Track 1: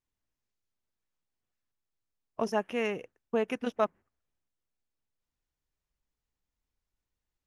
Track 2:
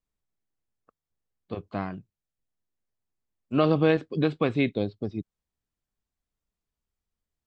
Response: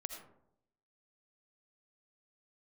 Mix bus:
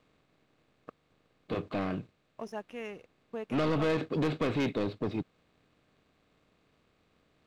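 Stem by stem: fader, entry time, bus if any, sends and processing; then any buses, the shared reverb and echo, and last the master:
-13.5 dB, 0.00 s, no send, dry
-5.5 dB, 0.00 s, no send, per-bin compression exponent 0.6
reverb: off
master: soft clip -23.5 dBFS, distortion -10 dB; sample leveller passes 1

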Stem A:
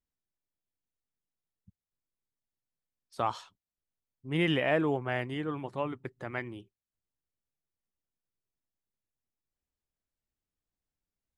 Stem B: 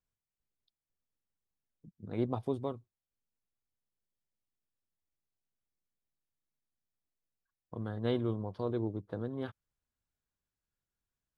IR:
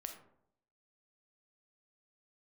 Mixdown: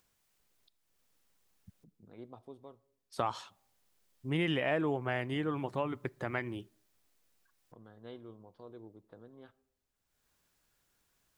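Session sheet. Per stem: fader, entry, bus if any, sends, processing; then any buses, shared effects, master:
+3.0 dB, 0.00 s, send -20 dB, dry
-15.5 dB, 0.00 s, send -9.5 dB, low shelf 180 Hz -10 dB; upward compressor, threshold -37 dBFS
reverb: on, RT60 0.70 s, pre-delay 4 ms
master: compressor 2.5:1, threshold -31 dBFS, peak gain reduction 8.5 dB

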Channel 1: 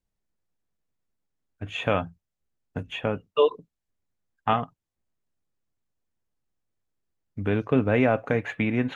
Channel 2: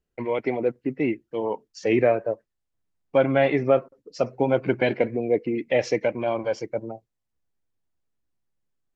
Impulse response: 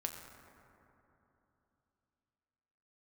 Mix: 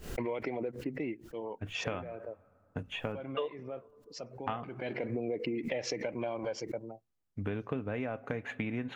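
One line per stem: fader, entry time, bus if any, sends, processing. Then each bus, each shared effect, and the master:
-5.5 dB, 0.00 s, send -21.5 dB, dry
+3.0 dB, 0.00 s, no send, limiter -16 dBFS, peak gain reduction 8.5 dB; backwards sustainer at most 120 dB/s; auto duck -19 dB, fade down 1.70 s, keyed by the first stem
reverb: on, RT60 3.1 s, pre-delay 6 ms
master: compressor 12:1, threshold -31 dBFS, peak gain reduction 13.5 dB

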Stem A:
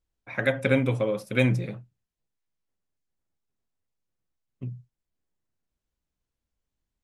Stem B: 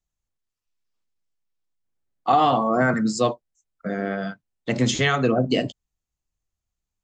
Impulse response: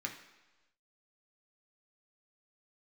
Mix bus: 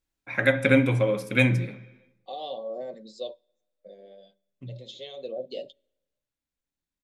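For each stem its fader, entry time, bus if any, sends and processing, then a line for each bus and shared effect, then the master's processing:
1.42 s 0 dB -> 1.76 s -7 dB, 0.00 s, send -3.5 dB, dry
-4.5 dB, 0.00 s, send -22.5 dB, double band-pass 1400 Hz, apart 2.8 oct; comb 5.2 ms, depth 42%; auto duck -9 dB, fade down 1.65 s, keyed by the first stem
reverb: on, RT60 1.1 s, pre-delay 3 ms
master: dry

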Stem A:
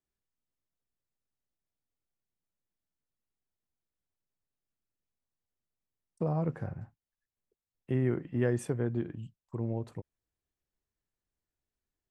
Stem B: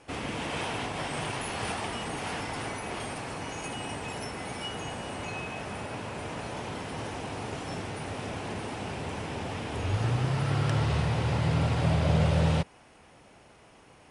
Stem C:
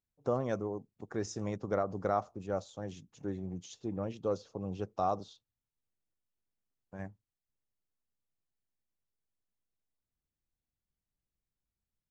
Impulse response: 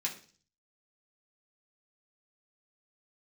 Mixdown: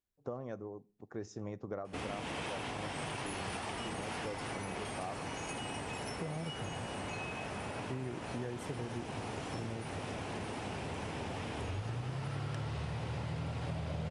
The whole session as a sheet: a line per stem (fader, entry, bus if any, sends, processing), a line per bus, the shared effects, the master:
-4.0 dB, 0.00 s, no send, dry
-2.5 dB, 1.85 s, no send, dry
-3.0 dB, 0.00 s, send -19 dB, high shelf 3200 Hz -9 dB; tremolo 0.66 Hz, depth 44%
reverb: on, RT60 0.40 s, pre-delay 3 ms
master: compressor, threshold -36 dBFS, peak gain reduction 13 dB

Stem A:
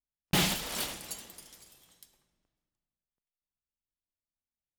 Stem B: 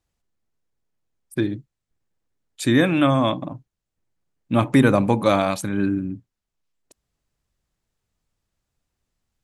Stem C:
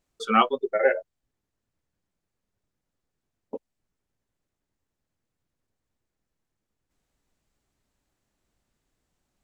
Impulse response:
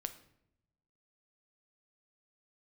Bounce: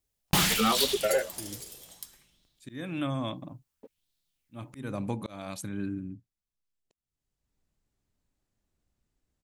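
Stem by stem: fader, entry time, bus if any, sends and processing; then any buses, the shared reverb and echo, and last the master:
+2.5 dB, 0.00 s, no send, high shelf 2600 Hz +10.5 dB; LFO bell 0.6 Hz 420–3900 Hz +12 dB
-16.5 dB, 0.00 s, no send, high shelf 2400 Hz +9.5 dB; auto swell 0.337 s
-5.0 dB, 0.30 s, no send, sample leveller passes 2; auto duck -22 dB, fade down 0.20 s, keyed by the second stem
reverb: off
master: low shelf 320 Hz +8 dB; compressor 2:1, threshold -28 dBFS, peak gain reduction 8.5 dB

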